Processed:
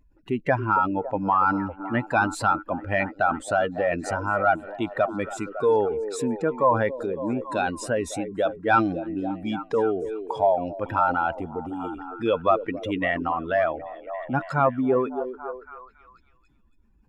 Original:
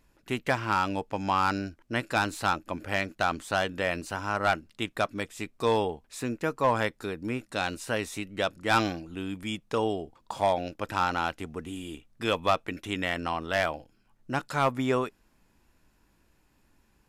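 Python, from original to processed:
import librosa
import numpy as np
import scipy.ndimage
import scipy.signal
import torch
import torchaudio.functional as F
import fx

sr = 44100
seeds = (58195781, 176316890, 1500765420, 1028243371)

y = fx.spec_expand(x, sr, power=2.0)
y = fx.echo_stepped(y, sr, ms=278, hz=370.0, octaves=0.7, feedback_pct=70, wet_db=-8.0)
y = y * librosa.db_to_amplitude(5.0)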